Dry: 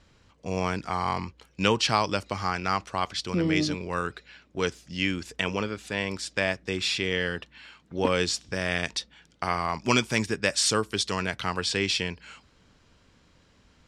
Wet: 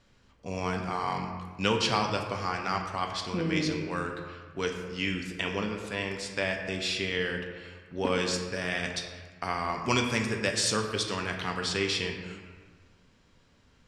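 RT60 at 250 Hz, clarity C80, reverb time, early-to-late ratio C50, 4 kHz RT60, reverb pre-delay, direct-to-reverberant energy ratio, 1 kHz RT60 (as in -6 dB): 1.8 s, 6.5 dB, 1.5 s, 5.5 dB, 0.95 s, 4 ms, 2.5 dB, 1.5 s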